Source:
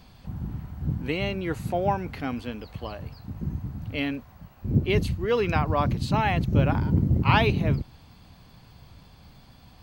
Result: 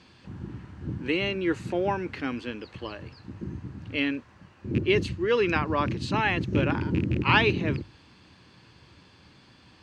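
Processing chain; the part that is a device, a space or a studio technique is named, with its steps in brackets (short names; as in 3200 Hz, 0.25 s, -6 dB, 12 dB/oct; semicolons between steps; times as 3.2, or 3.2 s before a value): notches 50/100/150 Hz; car door speaker with a rattle (rattling part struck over -18 dBFS, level -28 dBFS; speaker cabinet 110–8100 Hz, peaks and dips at 150 Hz -6 dB, 220 Hz -3 dB, 340 Hz +7 dB, 710 Hz -9 dB, 1700 Hz +5 dB, 2700 Hz +4 dB)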